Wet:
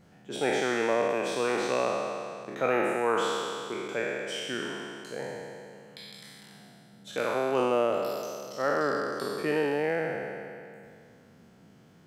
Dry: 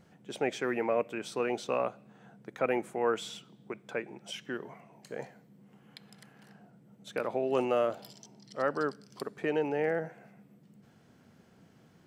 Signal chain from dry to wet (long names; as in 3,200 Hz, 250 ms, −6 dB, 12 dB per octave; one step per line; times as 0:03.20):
peak hold with a decay on every bin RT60 2.37 s